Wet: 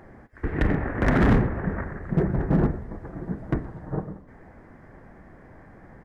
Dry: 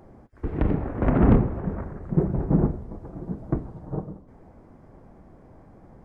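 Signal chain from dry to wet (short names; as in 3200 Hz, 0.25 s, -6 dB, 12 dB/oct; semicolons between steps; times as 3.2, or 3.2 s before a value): bell 1800 Hz +15 dB 0.72 oct; in parallel at -3.5 dB: wavefolder -16.5 dBFS; on the sum: speakerphone echo 0.12 s, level -21 dB; gain -3.5 dB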